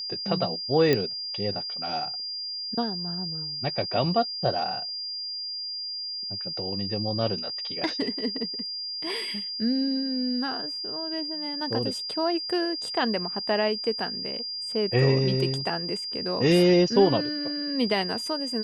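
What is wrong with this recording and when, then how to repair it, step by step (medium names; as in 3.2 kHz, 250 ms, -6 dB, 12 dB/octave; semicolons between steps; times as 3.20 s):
whine 4.8 kHz -31 dBFS
0.93 s: pop -10 dBFS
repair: de-click; band-stop 4.8 kHz, Q 30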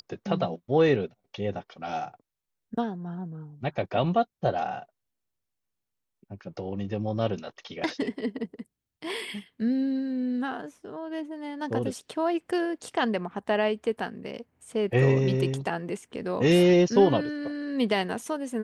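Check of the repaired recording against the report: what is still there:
nothing left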